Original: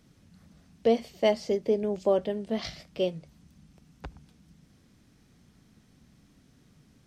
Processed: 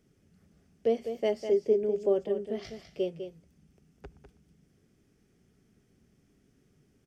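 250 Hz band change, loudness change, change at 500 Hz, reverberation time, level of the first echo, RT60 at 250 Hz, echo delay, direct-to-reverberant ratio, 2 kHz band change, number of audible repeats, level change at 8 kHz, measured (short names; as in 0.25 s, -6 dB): -4.5 dB, -2.0 dB, -1.0 dB, none, -9.0 dB, none, 0.201 s, none, -7.5 dB, 1, n/a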